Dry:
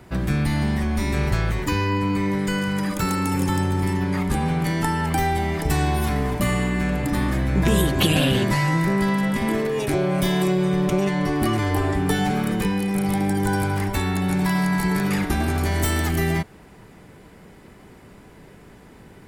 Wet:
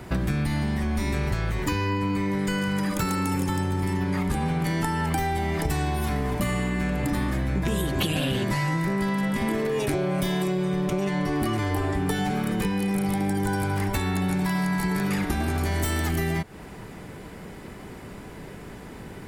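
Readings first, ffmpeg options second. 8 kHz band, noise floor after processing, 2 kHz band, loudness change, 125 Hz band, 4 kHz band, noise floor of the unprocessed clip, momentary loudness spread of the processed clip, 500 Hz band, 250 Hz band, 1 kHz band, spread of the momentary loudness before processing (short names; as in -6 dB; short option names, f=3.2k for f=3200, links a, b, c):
-4.0 dB, -41 dBFS, -4.0 dB, -4.0 dB, -4.0 dB, -4.5 dB, -47 dBFS, 16 LU, -4.0 dB, -3.5 dB, -4.0 dB, 4 LU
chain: -af "acompressor=threshold=-29dB:ratio=6,volume=6dB"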